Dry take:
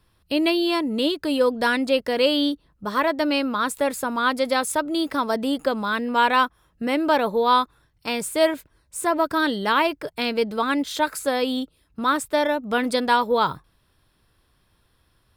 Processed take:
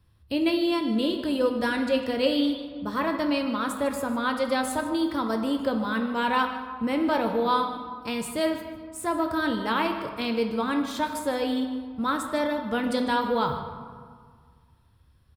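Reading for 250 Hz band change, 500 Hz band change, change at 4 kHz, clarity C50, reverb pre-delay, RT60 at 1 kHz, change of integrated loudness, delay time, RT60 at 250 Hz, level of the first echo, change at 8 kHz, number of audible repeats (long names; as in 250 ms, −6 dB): −1.0 dB, −4.5 dB, −6.0 dB, 6.0 dB, 4 ms, 1.8 s, −4.0 dB, 151 ms, 2.0 s, −15.0 dB, −7.0 dB, 1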